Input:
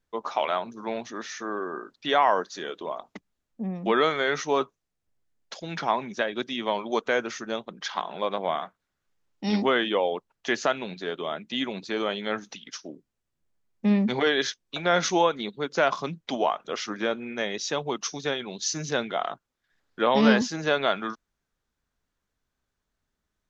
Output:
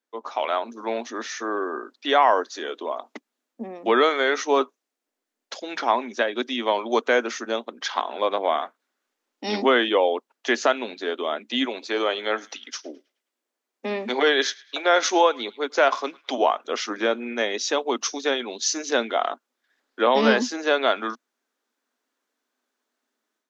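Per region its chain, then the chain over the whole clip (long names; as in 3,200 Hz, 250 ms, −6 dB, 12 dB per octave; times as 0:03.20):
0:11.65–0:16.38: high-pass filter 300 Hz + feedback echo with a band-pass in the loop 106 ms, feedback 44%, band-pass 2,400 Hz, level −20.5 dB
whole clip: elliptic high-pass filter 240 Hz, stop band 40 dB; automatic gain control gain up to 8 dB; level −2.5 dB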